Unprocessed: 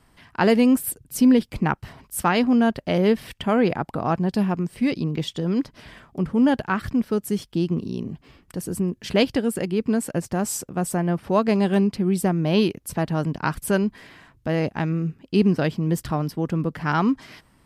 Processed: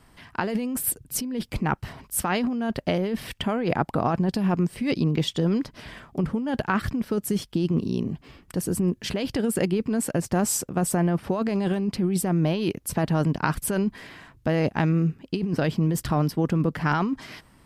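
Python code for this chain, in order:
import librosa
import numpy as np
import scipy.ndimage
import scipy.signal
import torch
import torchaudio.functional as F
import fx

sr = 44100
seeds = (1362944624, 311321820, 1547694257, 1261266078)

y = fx.over_compress(x, sr, threshold_db=-23.0, ratio=-1.0)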